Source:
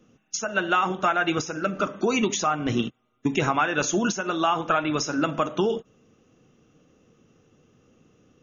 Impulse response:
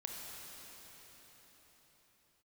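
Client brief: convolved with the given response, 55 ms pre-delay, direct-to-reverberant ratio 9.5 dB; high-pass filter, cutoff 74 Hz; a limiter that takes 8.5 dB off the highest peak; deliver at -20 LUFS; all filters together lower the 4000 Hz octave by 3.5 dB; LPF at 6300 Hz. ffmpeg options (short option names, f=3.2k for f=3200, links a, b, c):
-filter_complex "[0:a]highpass=74,lowpass=6.3k,equalizer=f=4k:t=o:g=-4.5,alimiter=limit=-18.5dB:level=0:latency=1,asplit=2[a][b];[1:a]atrim=start_sample=2205,adelay=55[c];[b][c]afir=irnorm=-1:irlink=0,volume=-9dB[d];[a][d]amix=inputs=2:normalize=0,volume=8.5dB"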